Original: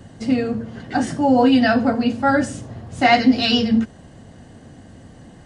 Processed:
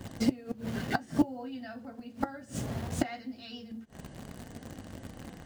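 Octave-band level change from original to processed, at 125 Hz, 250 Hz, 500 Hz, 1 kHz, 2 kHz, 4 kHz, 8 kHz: -8.5, -16.0, -19.0, -19.5, -18.5, -21.5, -8.0 dB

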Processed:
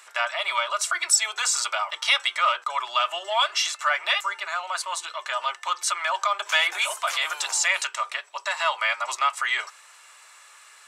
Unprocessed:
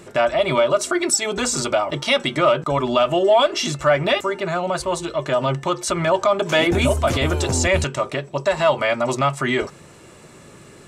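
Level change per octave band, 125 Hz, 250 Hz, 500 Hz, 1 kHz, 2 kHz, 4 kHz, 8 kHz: under -40 dB, under -35 dB, -17.5 dB, -3.0 dB, 0.0 dB, 0.0 dB, 0.0 dB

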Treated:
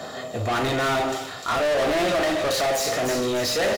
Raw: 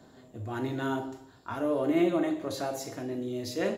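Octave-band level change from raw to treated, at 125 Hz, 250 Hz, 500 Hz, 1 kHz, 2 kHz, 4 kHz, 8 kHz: +6.5, +0.5, +9.0, +12.5, +14.0, +16.5, +15.5 dB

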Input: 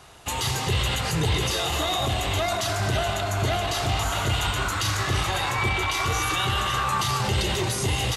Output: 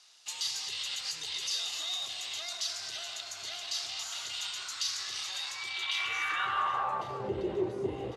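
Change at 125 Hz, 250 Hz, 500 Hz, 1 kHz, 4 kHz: -24.5, -11.0, -9.5, -10.5, -6.5 dB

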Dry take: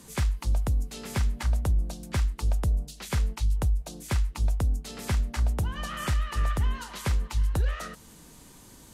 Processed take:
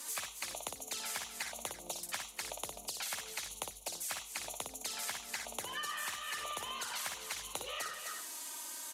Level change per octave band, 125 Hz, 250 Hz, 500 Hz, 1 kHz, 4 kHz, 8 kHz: -36.0, -19.5, -7.5, -4.5, +1.0, +3.5 dB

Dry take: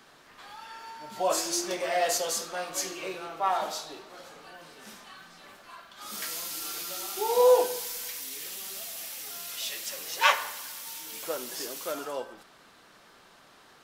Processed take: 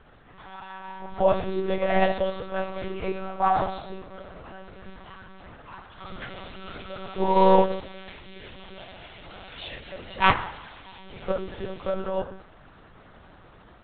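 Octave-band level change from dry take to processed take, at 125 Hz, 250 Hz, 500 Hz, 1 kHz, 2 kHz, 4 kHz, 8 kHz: n/a, +11.5 dB, +2.5 dB, +5.5 dB, +1.0 dB, -4.0 dB, under -40 dB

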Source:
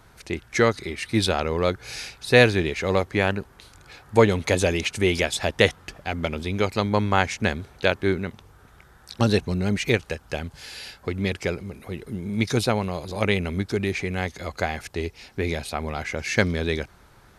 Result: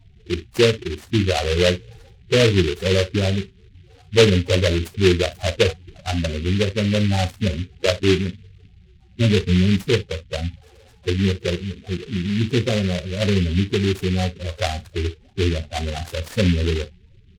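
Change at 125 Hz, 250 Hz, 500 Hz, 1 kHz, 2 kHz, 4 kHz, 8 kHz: +6.5, +4.5, +3.0, -3.5, -1.5, +5.0, +1.5 dB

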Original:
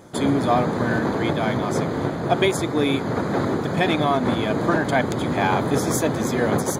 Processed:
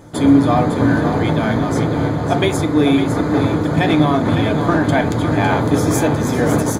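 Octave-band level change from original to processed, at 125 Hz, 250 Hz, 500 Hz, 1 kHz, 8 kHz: +8.0, +7.5, +3.5, +3.5, +2.5 dB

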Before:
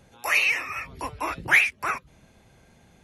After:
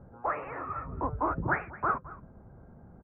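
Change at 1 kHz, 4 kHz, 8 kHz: 0.0 dB, under -40 dB, under -40 dB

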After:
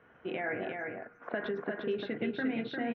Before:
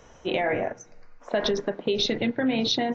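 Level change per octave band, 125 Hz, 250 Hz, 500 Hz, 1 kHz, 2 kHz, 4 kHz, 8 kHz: -9.0 dB, -8.0 dB, -9.0 dB, -9.5 dB, -4.5 dB, -20.5 dB, n/a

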